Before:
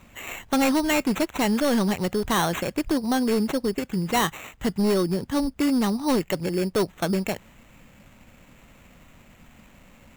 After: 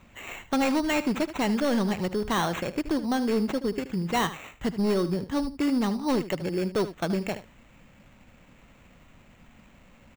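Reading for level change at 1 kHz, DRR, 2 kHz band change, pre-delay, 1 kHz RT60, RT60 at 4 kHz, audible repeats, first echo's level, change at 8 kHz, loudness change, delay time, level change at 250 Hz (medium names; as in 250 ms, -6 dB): -3.0 dB, no reverb, -3.0 dB, no reverb, no reverb, no reverb, 1, -13.5 dB, -7.0 dB, -3.0 dB, 76 ms, -3.0 dB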